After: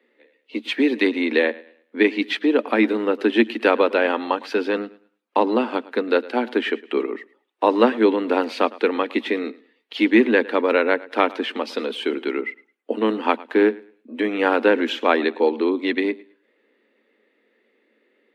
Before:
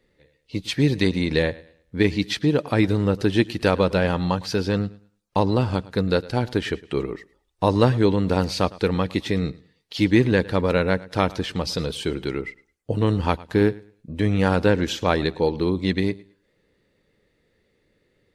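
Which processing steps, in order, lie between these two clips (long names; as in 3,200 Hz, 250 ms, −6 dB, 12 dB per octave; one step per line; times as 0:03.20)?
Chebyshev high-pass filter 220 Hz, order 8
high shelf with overshoot 3,900 Hz −11.5 dB, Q 1.5
level +3.5 dB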